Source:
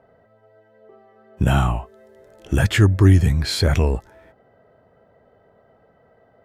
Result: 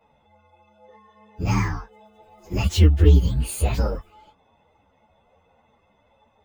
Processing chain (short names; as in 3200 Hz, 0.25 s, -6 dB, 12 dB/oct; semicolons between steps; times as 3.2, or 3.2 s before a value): inharmonic rescaling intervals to 128%; ensemble effect; gain +2 dB